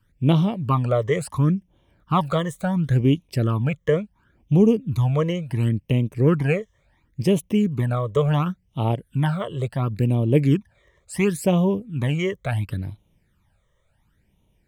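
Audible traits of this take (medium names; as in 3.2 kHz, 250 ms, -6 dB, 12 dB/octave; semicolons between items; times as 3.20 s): phasing stages 12, 0.71 Hz, lowest notch 250–1600 Hz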